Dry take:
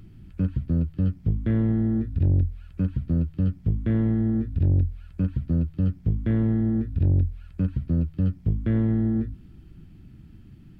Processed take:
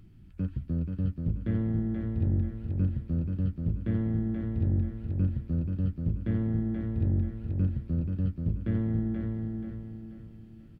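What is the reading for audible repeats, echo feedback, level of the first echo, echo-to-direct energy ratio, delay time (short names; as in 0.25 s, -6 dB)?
4, 39%, -4.5 dB, -4.0 dB, 0.482 s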